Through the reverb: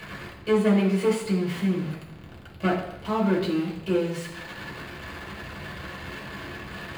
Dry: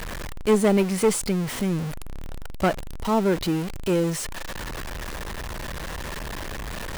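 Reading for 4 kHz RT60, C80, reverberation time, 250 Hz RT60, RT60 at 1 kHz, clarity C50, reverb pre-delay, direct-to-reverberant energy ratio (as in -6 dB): 0.90 s, 9.0 dB, 0.85 s, 0.80 s, 0.85 s, 6.0 dB, 3 ms, -5.0 dB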